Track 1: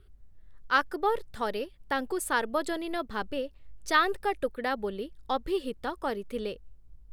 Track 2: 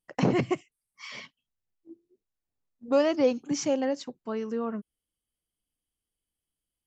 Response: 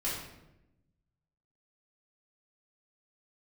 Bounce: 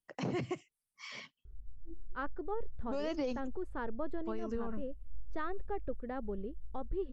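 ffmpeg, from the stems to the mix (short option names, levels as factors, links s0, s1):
-filter_complex "[0:a]lowpass=f=1200:p=1,aemphasis=mode=reproduction:type=riaa,adelay=1450,volume=0.282[s0];[1:a]acrossover=split=130|3000[s1][s2][s3];[s2]acompressor=threshold=0.0355:ratio=1.5[s4];[s1][s4][s3]amix=inputs=3:normalize=0,volume=0.562,asplit=3[s5][s6][s7];[s5]atrim=end=3.48,asetpts=PTS-STARTPTS,afade=t=out:st=3.476:d=0.004:c=hsin[s8];[s6]atrim=start=3.48:end=4.17,asetpts=PTS-STARTPTS,volume=0[s9];[s7]atrim=start=4.17,asetpts=PTS-STARTPTS,afade=t=in:d=0.004:c=hsin[s10];[s8][s9][s10]concat=n=3:v=0:a=1[s11];[s0][s11]amix=inputs=2:normalize=0,alimiter=level_in=1.5:limit=0.0631:level=0:latency=1:release=50,volume=0.668"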